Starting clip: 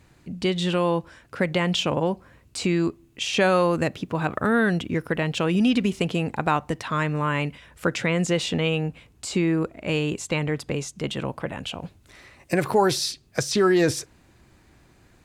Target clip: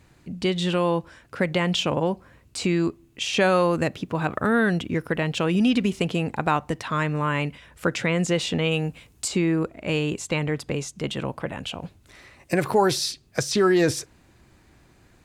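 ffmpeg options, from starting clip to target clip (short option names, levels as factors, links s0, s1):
-filter_complex "[0:a]asettb=1/sr,asplit=3[s0][s1][s2];[s0]atrim=end=8.714[s3];[s1]atrim=start=8.71:end=9.28,asetpts=PTS-STARTPTS,afade=t=in:d=0.004:c=qsin,afade=t=out:st=0.566:d=0.004:c=qsin,highshelf=f=4900:g=10[s4];[s2]atrim=start=9.276[s5];[s3][s4]acrossfade=d=0.004:c1=hsin:c2=qsin[s6];[s6][s5]acrossfade=d=0.004:c1=qsin:c2=hsin"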